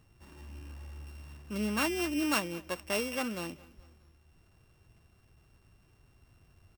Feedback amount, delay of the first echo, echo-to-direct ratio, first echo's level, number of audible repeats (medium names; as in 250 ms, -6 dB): 48%, 214 ms, -21.0 dB, -22.0 dB, 3